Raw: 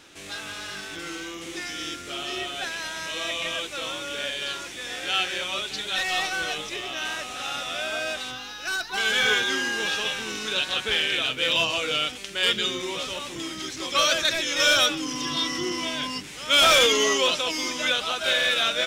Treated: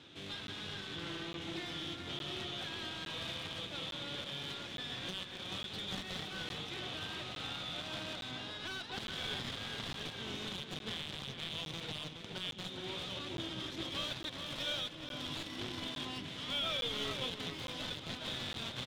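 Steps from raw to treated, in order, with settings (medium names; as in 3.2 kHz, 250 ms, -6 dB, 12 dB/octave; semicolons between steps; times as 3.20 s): Chebyshev shaper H 3 -7 dB, 5 -33 dB, 6 -10 dB, 8 -12 dB, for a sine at -13.5 dBFS; high-pass 93 Hz 24 dB/octave; peaking EQ 3.5 kHz +14 dB 0.6 oct; compression 2:1, threshold -42 dBFS, peak gain reduction 20 dB; peak limiter -26.5 dBFS, peak gain reduction 11.5 dB; saturation -28 dBFS, distortion -21 dB; RIAA curve playback; echo from a far wall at 72 m, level -6 dB; crackling interface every 0.86 s, samples 512, zero, from 0.47 s; trim +4 dB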